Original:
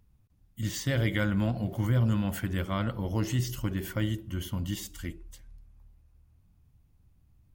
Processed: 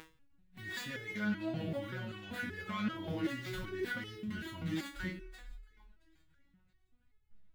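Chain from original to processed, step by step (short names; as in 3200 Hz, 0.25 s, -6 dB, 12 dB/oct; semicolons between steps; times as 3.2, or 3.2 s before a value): median filter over 15 samples; band shelf 2400 Hz +9.5 dB; upward compressor, threshold -39 dBFS; limiter -31.5 dBFS, peak gain reduction 17.5 dB; spectral noise reduction 20 dB; on a send: thinning echo 0.673 s, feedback 36%, high-pass 230 Hz, level -23.5 dB; on the sum: Schroeder reverb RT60 0.95 s, combs from 29 ms, DRR 17 dB; stepped resonator 5.2 Hz 160–430 Hz; gain +16.5 dB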